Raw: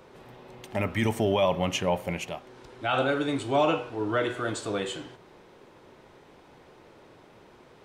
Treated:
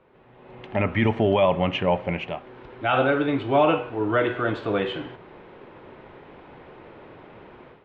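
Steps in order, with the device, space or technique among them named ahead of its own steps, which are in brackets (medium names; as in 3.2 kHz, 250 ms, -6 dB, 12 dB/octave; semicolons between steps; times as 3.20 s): action camera in a waterproof case (low-pass 3 kHz 24 dB/octave; level rider gain up to 15 dB; trim -7 dB; AAC 128 kbps 44.1 kHz)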